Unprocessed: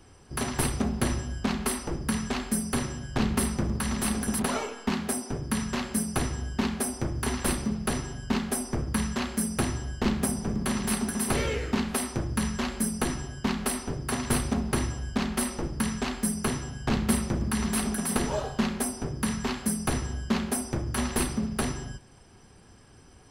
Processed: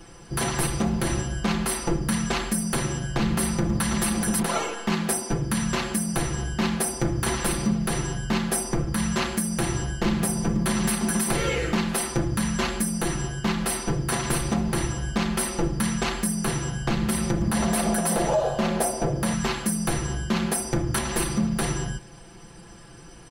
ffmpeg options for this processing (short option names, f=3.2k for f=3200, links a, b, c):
-filter_complex "[0:a]asettb=1/sr,asplit=3[a][b][c];[a]atrim=end=17.514[d];[b]atrim=start=17.51:end=19.34,asetpts=PTS-STARTPTS,afade=t=in:d=0.004:c=qsin,afade=t=out:st=1.826:d=0.004:c=qsin,equalizer=f=610:t=o:w=0.79:g=13.5[e];[c]atrim=start=19.336[f];[d][e]acrossfade=d=0.004:c1=hsin:c2=qsin[g];[g][f]acrossfade=d=0.004:c1=qsin:c2=hsin,aecho=1:1:5.9:0.99,alimiter=limit=-19.5dB:level=0:latency=1:release=202,acontrast=71,volume=-1dB"